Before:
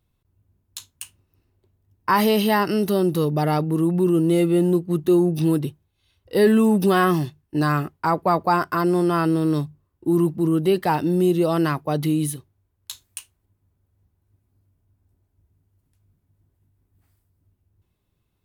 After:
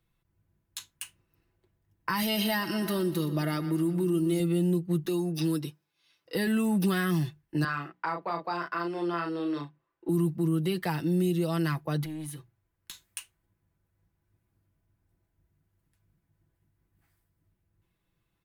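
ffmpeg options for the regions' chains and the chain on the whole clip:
-filter_complex "[0:a]asettb=1/sr,asplit=3[a][b][c];[a]atrim=end=2.224[d];[b]atrim=start=2.22:end=4.4,asetpts=PTS-STARTPTS,afade=t=in:d=0.004:c=qsin,afade=t=out:st=2.176:d=0.004:c=qsin,aecho=1:1:3.2:0.44,atrim=end_sample=96138,aecho=1:1:121|242|363|484|605|726:0.178|0.101|0.0578|0.0329|0.0188|0.0107,atrim=end_sample=96138[e];[c]atrim=start=4.396[f];[d][e]acrossfade=d=0.004:c1=hsin:c2=qsin[g];[g][f]acrossfade=d=0.004:c1=qsin:c2=hsin,asettb=1/sr,asplit=3[h][i][j];[h]atrim=end=5.054[k];[i]atrim=start=5.05:end=6.35,asetpts=PTS-STARTPTS,afade=t=in:d=0.004:c=qsin,afade=t=out:st=1.296:d=0.004:c=qsin,highpass=250,equalizer=f=5.2k:t=o:w=0.38:g=10,aecho=1:1:6.8:0.41,atrim=end_sample=57330[l];[j]atrim=start=6.346[m];[k][l]acrossfade=d=0.004:c1=hsin:c2=qsin[n];[n][m]acrossfade=d=0.004:c1=qsin:c2=hsin,asettb=1/sr,asplit=3[o][p][q];[o]atrim=end=7.644[r];[p]atrim=start=7.64:end=10.09,asetpts=PTS-STARTPTS,afade=t=in:d=0.004:c=qsin,afade=t=out:st=2.446:d=0.004:c=qsin,acrossover=split=310 4600:gain=0.112 1 0.0631[s][t][u];[s][t][u]amix=inputs=3:normalize=0,bandreject=f=60:t=h:w=6,bandreject=f=120:t=h:w=6,bandreject=f=180:t=h:w=6,bandreject=f=240:t=h:w=6,bandreject=f=300:t=h:w=6,asplit=2[v][w];[w]adelay=35,volume=-4.5dB[x];[v][x]amix=inputs=2:normalize=0,atrim=end_sample=108045[y];[q]atrim=start=10.086[z];[r][y]acrossfade=d=0.004:c1=hsin:c2=qsin[aa];[aa][z]acrossfade=d=0.004:c1=qsin:c2=hsin,asettb=1/sr,asplit=3[ab][ac][ad];[ab]atrim=end=12.034[ae];[ac]atrim=start=12.03:end=13.04,asetpts=PTS-STARTPTS,afade=t=in:d=0.004:c=qsin,afade=t=out:st=1.006:d=0.004:c=qsin,acompressor=threshold=-32dB:ratio=4:attack=3.2:release=140:knee=1:detection=peak,aeval=exprs='clip(val(0),-1,0.0282)':c=same,bandreject=f=60:t=h:w=6,bandreject=f=120:t=h:w=6,bandreject=f=180:t=h:w=6[af];[ad]atrim=start=13.036[ag];[ae][af]acrossfade=d=0.004:c1=hsin:c2=qsin[ah];[ah][ag]acrossfade=d=0.004:c1=qsin:c2=hsin,equalizer=f=1.8k:w=1.1:g=7,aecho=1:1:6:0.51,acrossover=split=210|3000[ai][aj][ak];[aj]acompressor=threshold=-25dB:ratio=6[al];[ai][al][ak]amix=inputs=3:normalize=0,volume=-5.5dB"

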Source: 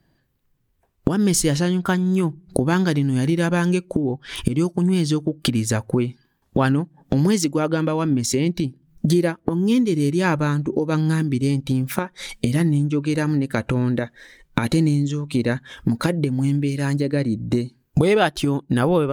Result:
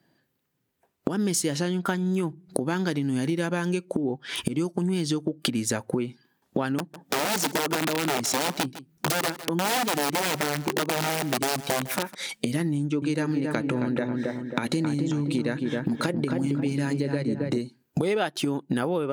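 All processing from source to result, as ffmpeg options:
-filter_complex "[0:a]asettb=1/sr,asplit=3[a][b][c];[a]atrim=end=6.784[d];[b]atrim=start=6.78:end=12.15,asetpts=PTS-STARTPTS,afade=t=in:d=0.004:c=qsin,afade=t=out:st=5.366:d=0.004:c=qsin,aeval=exprs='(mod(5.62*val(0)+1,2)-1)/5.62':c=same,aecho=1:1:155:0.126,atrim=end_sample=236817[e];[c]atrim=start=12.146[f];[d][e]acrossfade=d=0.004:c1=hsin:c2=qsin[g];[g][f]acrossfade=d=0.004:c1=qsin:c2=hsin,asettb=1/sr,asplit=3[h][i][j];[h]atrim=end=12.754[k];[i]atrim=start=12.75:end=17.58,asetpts=PTS-STARTPTS,afade=t=in:d=0.004:c=qsin,afade=t=out:st=4.826:d=0.004:c=qsin,equalizer=f=13k:t=o:w=0.25:g=-9.5,asplit=2[l][m];[m]adelay=270,lowpass=f=1.6k:p=1,volume=-4.5dB,asplit=2[n][o];[o]adelay=270,lowpass=f=1.6k:p=1,volume=0.47,asplit=2[p][q];[q]adelay=270,lowpass=f=1.6k:p=1,volume=0.47,asplit=2[r][s];[s]adelay=270,lowpass=f=1.6k:p=1,volume=0.47,asplit=2[t][u];[u]adelay=270,lowpass=f=1.6k:p=1,volume=0.47,asplit=2[v][w];[w]adelay=270,lowpass=f=1.6k:p=1,volume=0.47[x];[l][n][p][r][t][v][x]amix=inputs=7:normalize=0,atrim=end_sample=213003[y];[j]atrim=start=17.576[z];[k][y]acrossfade=d=0.004:c1=hsin:c2=qsin[aa];[aa][z]acrossfade=d=0.004:c1=qsin:c2=hsin,highpass=190,bandreject=f=1.1k:w=20,acompressor=threshold=-22dB:ratio=6"

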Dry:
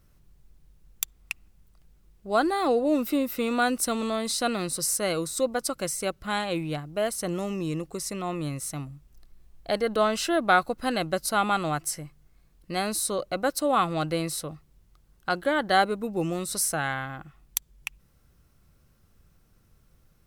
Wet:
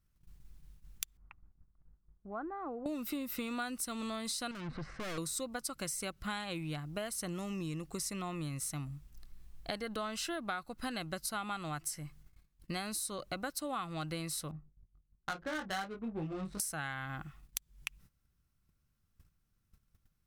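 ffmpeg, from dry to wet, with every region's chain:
-filter_complex "[0:a]asettb=1/sr,asplit=3[a][b][c];[a]atrim=end=1.174[d];[b]atrim=start=1.17:end=2.86,asetpts=PTS-STARTPTS,afade=t=in:d=0.004:c=qsin,afade=t=out:st=1.686:d=0.004:c=qsin,lowpass=f=1.4k:w=0.5412,lowpass=f=1.4k:w=1.3066,acompressor=threshold=-56dB:ratio=1.5:attack=3.2:release=140:knee=1:detection=peak[e];[c]atrim=start=2.856[f];[d][e]acrossfade=d=0.004:c1=hsin:c2=qsin[g];[g][f]acrossfade=d=0.004:c1=qsin:c2=hsin,asettb=1/sr,asplit=3[h][i][j];[h]atrim=end=4.514[k];[i]atrim=start=4.51:end=5.18,asetpts=PTS-STARTPTS,afade=t=in:d=0.004:c=qsin,afade=t=out:st=0.666:d=0.004:c=qsin,lowpass=f=2.1k:w=0.5412,lowpass=f=2.1k:w=1.3066,acontrast=75,aeval=exprs='(tanh(50.1*val(0)+0.4)-tanh(0.4))/50.1':c=same[l];[j]atrim=start=5.176[m];[k][l]acrossfade=d=0.004:c1=hsin:c2=qsin[n];[n][m]acrossfade=d=0.004:c1=qsin:c2=hsin,asettb=1/sr,asplit=3[o][p][q];[o]atrim=end=14.514[r];[p]atrim=start=14.51:end=16.6,asetpts=PTS-STARTPTS,afade=t=in:d=0.004:c=qsin,afade=t=out:st=2.086:d=0.004:c=qsin,asplit=2[s][t];[t]adelay=26,volume=-8.5dB[u];[s][u]amix=inputs=2:normalize=0,atrim=end_sample=92169,flanger=delay=18:depth=2.4:speed=1.3,adynamicsmooth=sensitivity=4.5:basefreq=680[v];[q]atrim=start=16.596[w];[r][v]acrossfade=d=0.004:c1=hsin:c2=qsin[x];[x][w]acrossfade=d=0.004:c1=qsin:c2=hsin,equalizer=f=500:t=o:w=1.4:g=-8.5,agate=range=-16dB:threshold=-56dB:ratio=16:detection=peak,acompressor=threshold=-36dB:ratio=10,volume=1dB"

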